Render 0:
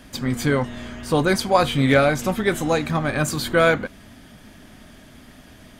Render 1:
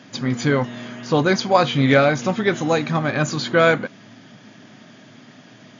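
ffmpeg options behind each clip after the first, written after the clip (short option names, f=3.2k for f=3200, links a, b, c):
-af "afftfilt=real='re*between(b*sr/4096,100,7100)':imag='im*between(b*sr/4096,100,7100)':win_size=4096:overlap=0.75,volume=1.5dB"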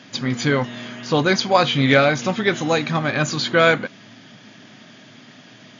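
-af "equalizer=f=3.4k:w=0.64:g=5.5,volume=-1dB"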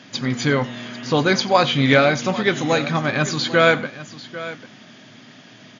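-af "aecho=1:1:91|796:0.1|0.168"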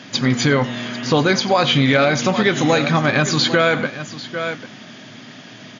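-af "alimiter=limit=-11.5dB:level=0:latency=1:release=119,volume=6dB"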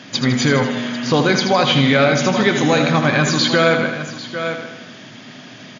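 -af "aecho=1:1:79|158|237|316|395|474|553:0.398|0.231|0.134|0.0777|0.0451|0.0261|0.0152"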